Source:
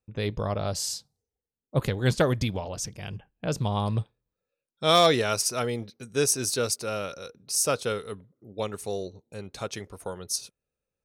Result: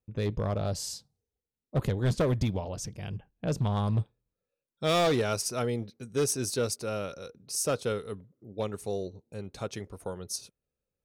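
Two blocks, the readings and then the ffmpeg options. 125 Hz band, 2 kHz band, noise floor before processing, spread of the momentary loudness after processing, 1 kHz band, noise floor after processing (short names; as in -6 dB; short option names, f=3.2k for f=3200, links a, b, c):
-0.5 dB, -6.0 dB, under -85 dBFS, 13 LU, -6.0 dB, under -85 dBFS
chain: -af "tiltshelf=f=670:g=3.5,asoftclip=type=hard:threshold=-18.5dB,volume=-2.5dB"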